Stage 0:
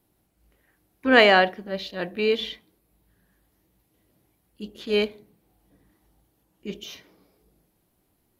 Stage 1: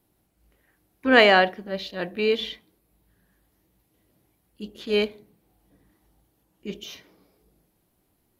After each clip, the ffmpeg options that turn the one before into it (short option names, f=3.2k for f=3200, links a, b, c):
-af anull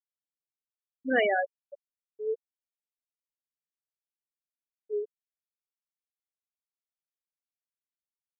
-af "adynamicsmooth=sensitivity=2.5:basefreq=3.2k,afftfilt=real='re*gte(hypot(re,im),0.501)':imag='im*gte(hypot(re,im),0.501)':win_size=1024:overlap=0.75,volume=-8dB"